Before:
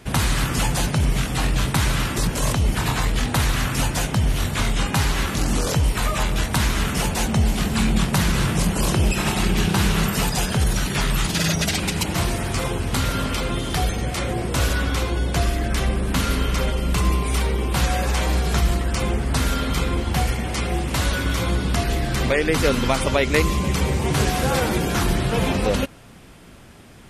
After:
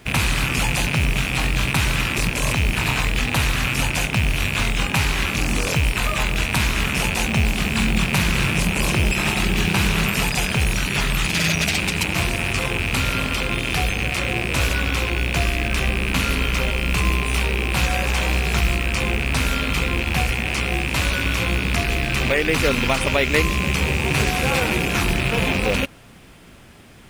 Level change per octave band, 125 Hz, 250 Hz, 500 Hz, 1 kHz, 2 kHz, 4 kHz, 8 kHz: −1.0, −1.0, −1.0, −0.5, +6.5, +3.0, −0.5 decibels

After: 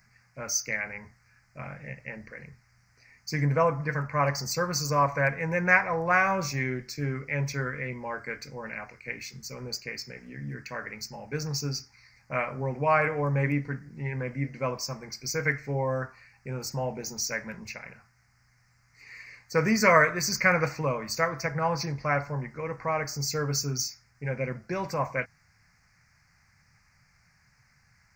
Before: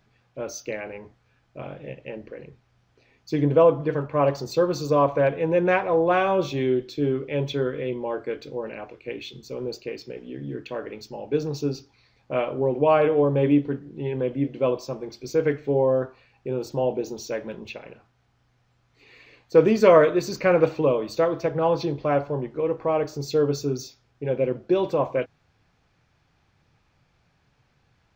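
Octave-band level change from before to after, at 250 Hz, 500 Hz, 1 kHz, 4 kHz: −7.5, −10.0, −1.0, +3.0 decibels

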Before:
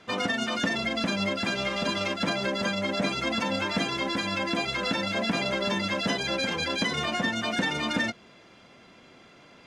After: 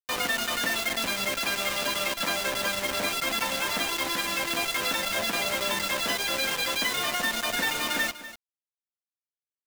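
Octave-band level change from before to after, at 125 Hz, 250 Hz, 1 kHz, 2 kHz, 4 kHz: −10.0, −8.5, +0.5, +1.5, +2.0 decibels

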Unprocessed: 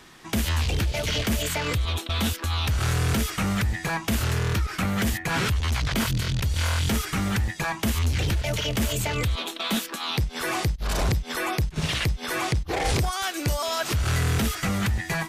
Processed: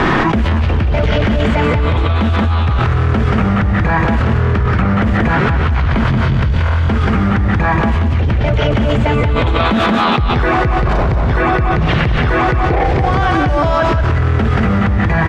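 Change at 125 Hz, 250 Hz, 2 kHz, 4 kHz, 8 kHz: +12.5 dB, +13.5 dB, +10.5 dB, +2.5 dB, below −10 dB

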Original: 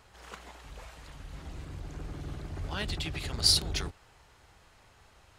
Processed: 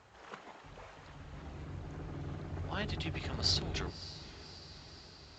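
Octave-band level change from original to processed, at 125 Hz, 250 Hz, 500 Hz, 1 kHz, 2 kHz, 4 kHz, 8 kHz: −2.0, −0.5, −0.5, −1.0, −3.0, −7.5, −12.0 decibels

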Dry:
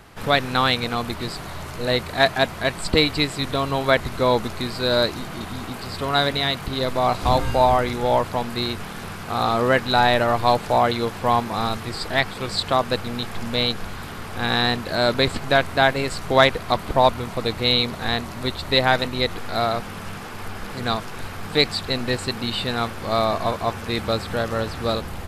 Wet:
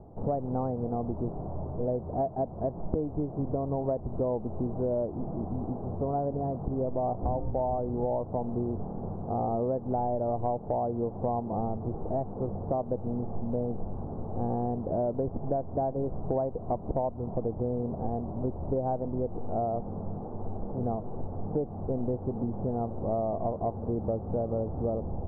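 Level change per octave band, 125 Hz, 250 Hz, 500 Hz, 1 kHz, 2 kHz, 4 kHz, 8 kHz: −5.0 dB, −5.0 dB, −7.5 dB, −12.5 dB, below −40 dB, below −40 dB, below −40 dB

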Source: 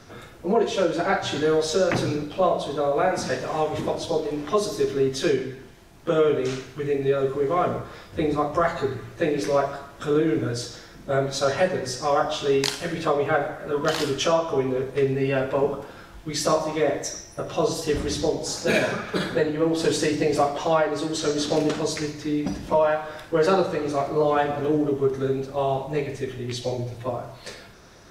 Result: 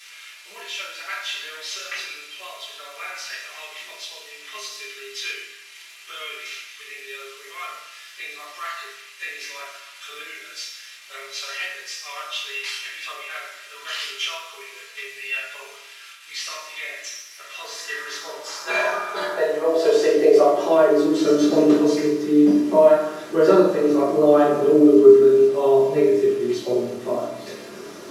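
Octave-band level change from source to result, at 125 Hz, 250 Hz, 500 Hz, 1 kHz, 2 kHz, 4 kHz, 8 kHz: −10.0, +5.0, +3.5, −2.5, +1.5, +1.0, −2.0 decibels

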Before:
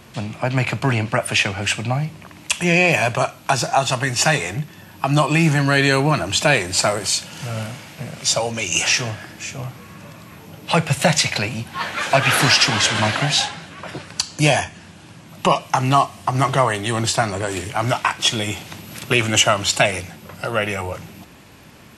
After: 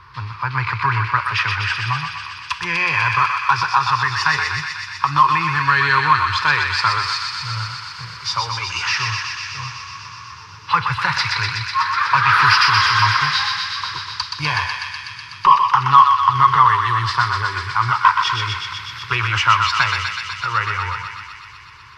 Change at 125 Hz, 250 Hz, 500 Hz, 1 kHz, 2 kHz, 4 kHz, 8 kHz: −3.5, −13.5, −17.0, +7.0, +3.0, −1.0, −12.5 decibels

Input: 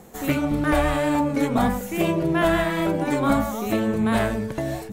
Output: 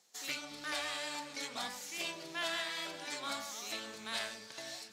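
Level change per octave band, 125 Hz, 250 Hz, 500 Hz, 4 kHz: −35.0, −29.5, −23.0, −2.0 decibels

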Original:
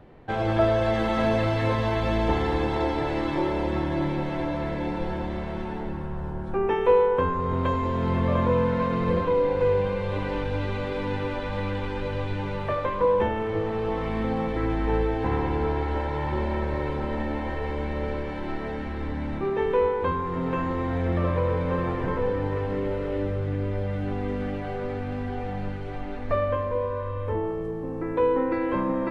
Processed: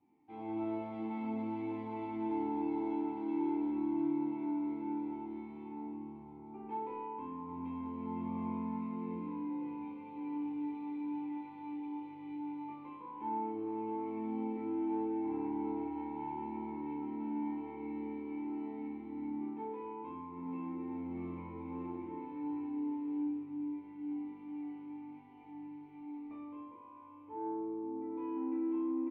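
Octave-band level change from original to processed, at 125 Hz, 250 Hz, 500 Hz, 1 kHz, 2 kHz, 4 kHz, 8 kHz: −25.5 dB, −7.0 dB, −20.0 dB, −13.5 dB, −24.5 dB, below −25 dB, can't be measured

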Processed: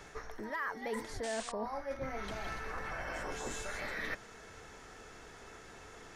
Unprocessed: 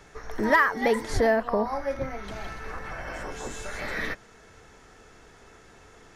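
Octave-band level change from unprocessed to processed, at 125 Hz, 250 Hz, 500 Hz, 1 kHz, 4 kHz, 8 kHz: −10.5, −13.5, −13.5, −12.5, −6.5, −3.5 decibels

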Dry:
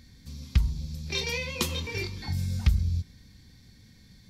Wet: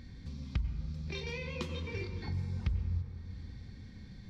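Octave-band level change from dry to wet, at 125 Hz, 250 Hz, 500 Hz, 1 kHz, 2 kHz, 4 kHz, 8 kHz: −7.0, −5.0, −5.5, −8.0, −9.5, −13.5, −19.5 decibels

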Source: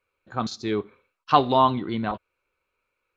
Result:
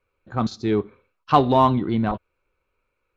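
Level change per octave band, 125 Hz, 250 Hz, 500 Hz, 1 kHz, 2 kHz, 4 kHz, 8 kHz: +7.5 dB, +5.5 dB, +3.0 dB, +1.0 dB, 0.0 dB, −2.5 dB, can't be measured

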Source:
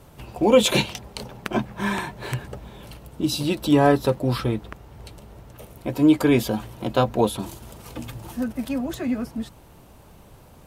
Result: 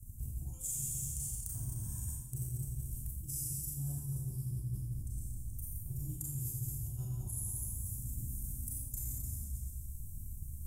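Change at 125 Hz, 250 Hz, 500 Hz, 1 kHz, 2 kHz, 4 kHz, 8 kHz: −8.0 dB, −27.5 dB, below −40 dB, below −40 dB, below −40 dB, below −30 dB, −2.0 dB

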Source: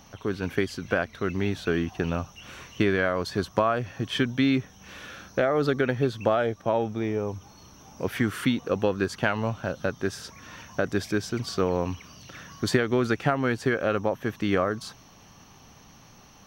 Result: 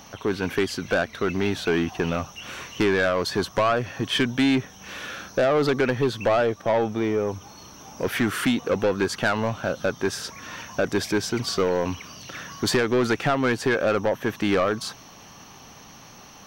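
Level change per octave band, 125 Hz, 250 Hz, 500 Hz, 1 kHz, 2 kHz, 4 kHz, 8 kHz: −0.5, +2.0, +3.5, +3.0, +3.5, +6.0, +7.0 decibels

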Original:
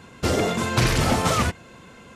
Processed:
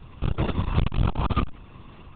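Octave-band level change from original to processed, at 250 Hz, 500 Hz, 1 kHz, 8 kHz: −5.0 dB, −10.5 dB, −7.5 dB, below −40 dB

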